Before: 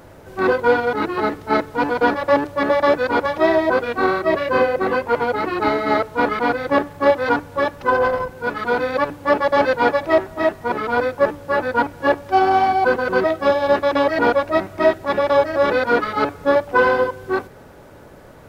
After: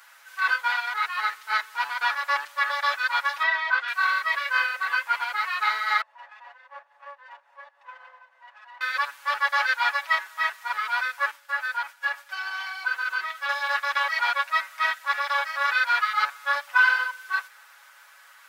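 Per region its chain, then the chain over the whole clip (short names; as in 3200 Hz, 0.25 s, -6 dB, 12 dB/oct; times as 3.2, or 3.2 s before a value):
3.43–3.88 LPF 3800 Hz + notch 2400 Hz, Q 16 + three-band squash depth 40%
6.01–8.81 minimum comb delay 1.1 ms + band-pass 520 Hz, Q 5.7 + upward compressor, threshold -33 dBFS
11.31–13.49 expander -32 dBFS + notch 1100 Hz, Q 21 + compressor 2:1, threshold -22 dBFS
whole clip: HPF 1300 Hz 24 dB/oct; comb 7.2 ms, depth 79%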